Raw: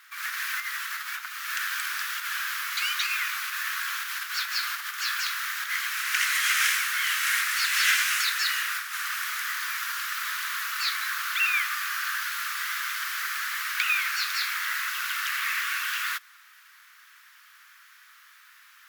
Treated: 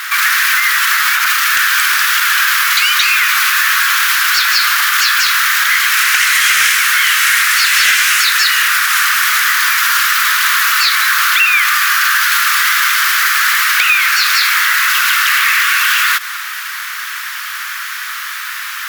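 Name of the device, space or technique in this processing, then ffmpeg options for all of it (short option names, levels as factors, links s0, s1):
loud club master: -af "acompressor=threshold=0.0316:ratio=3,asoftclip=type=hard:threshold=0.0668,alimiter=level_in=44.7:limit=0.891:release=50:level=0:latency=1,volume=0.75"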